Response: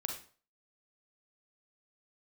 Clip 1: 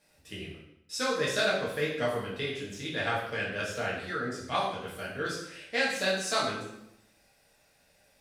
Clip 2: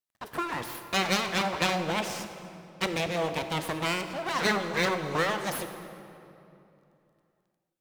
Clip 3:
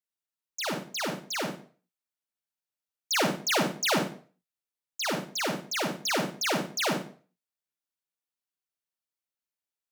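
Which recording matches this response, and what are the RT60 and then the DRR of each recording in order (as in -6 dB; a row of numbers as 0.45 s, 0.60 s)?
3; 0.85 s, 2.9 s, 0.45 s; -6.5 dB, 8.0 dB, 2.0 dB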